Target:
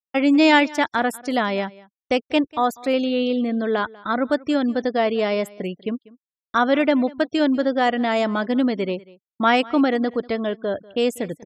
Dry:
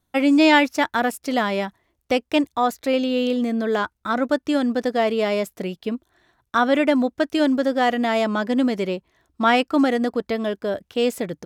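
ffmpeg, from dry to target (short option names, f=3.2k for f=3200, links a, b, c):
-af "afftfilt=real='re*gte(hypot(re,im),0.0126)':imag='im*gte(hypot(re,im),0.0126)':win_size=1024:overlap=0.75,agate=range=-33dB:threshold=-37dB:ratio=3:detection=peak,aecho=1:1:193:0.0794"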